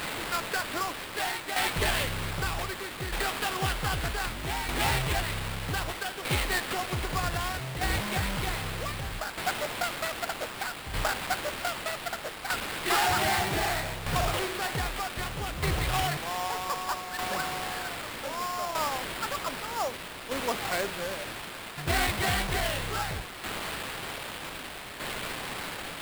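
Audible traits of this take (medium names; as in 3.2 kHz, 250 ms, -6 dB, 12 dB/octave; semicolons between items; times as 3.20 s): a quantiser's noise floor 6-bit, dither triangular; tremolo saw down 0.64 Hz, depth 60%; aliases and images of a low sample rate 6.2 kHz, jitter 20%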